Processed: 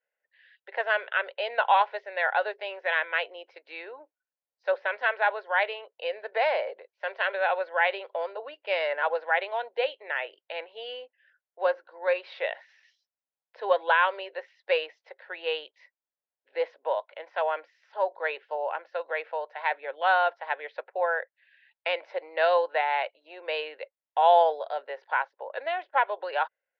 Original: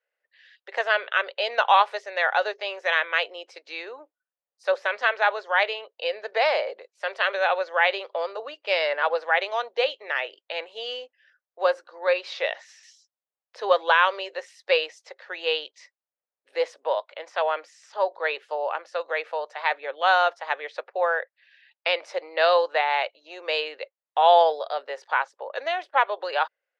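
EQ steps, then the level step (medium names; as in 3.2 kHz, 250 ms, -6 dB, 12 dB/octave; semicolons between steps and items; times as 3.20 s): Gaussian low-pass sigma 2.7 samples; Butterworth band-stop 1.2 kHz, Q 7.3; bass shelf 270 Hz -9.5 dB; -1.0 dB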